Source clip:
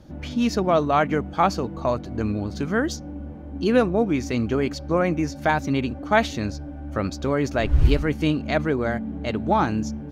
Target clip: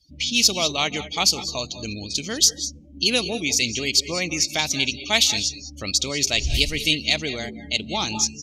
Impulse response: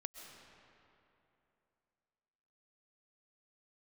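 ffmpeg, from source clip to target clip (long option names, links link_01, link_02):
-filter_complex "[0:a]aexciter=amount=9.2:drive=9.5:freq=2400,atempo=1.2[link_01];[1:a]atrim=start_sample=2205,atrim=end_sample=6174,asetrate=29106,aresample=44100[link_02];[link_01][link_02]afir=irnorm=-1:irlink=0,afftdn=noise_reduction=28:noise_floor=-34,volume=-5dB"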